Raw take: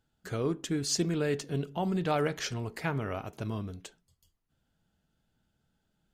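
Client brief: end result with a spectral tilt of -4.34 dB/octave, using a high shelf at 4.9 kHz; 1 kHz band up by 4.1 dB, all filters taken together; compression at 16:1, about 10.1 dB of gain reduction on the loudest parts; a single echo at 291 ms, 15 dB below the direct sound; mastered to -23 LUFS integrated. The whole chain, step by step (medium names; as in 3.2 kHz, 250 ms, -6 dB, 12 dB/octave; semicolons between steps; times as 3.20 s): peaking EQ 1 kHz +5.5 dB; treble shelf 4.9 kHz +6 dB; compression 16:1, threshold -32 dBFS; delay 291 ms -15 dB; trim +14.5 dB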